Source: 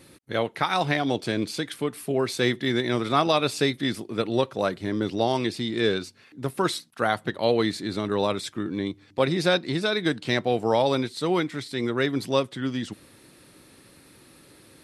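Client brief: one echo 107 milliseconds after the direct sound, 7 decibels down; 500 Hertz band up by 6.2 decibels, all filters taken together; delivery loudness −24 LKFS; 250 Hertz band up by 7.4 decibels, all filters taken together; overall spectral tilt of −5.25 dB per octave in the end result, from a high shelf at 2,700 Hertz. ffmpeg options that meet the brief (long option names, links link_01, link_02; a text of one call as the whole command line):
ffmpeg -i in.wav -af "equalizer=frequency=250:width_type=o:gain=7.5,equalizer=frequency=500:width_type=o:gain=5.5,highshelf=frequency=2700:gain=-3.5,aecho=1:1:107:0.447,volume=-4dB" out.wav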